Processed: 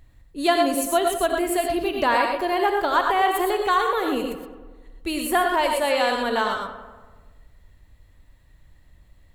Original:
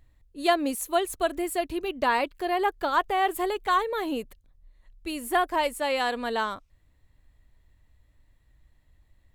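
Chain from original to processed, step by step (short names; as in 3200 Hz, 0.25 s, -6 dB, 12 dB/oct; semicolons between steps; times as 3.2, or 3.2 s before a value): darkening echo 95 ms, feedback 64%, low-pass 2900 Hz, level -13.5 dB; non-linear reverb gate 0.14 s rising, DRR 3 dB; in parallel at +2 dB: compressor, threshold -31 dBFS, peak gain reduction 13.5 dB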